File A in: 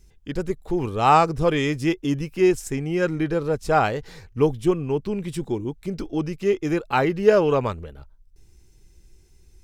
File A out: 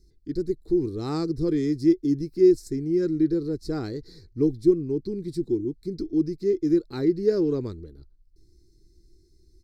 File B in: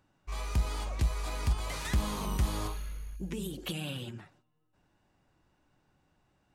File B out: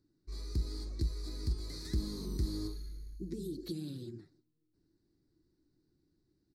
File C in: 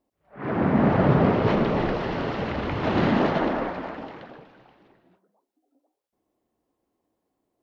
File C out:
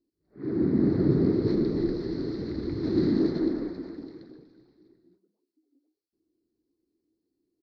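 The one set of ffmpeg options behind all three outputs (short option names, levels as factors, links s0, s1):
-af "firequalizer=gain_entry='entry(220,0);entry(330,10);entry(580,-15);entry(820,-19);entry(1300,-15);entry(2000,-11);entry(2900,-26);entry(4200,7);entry(6500,-6)':delay=0.05:min_phase=1,volume=0.562"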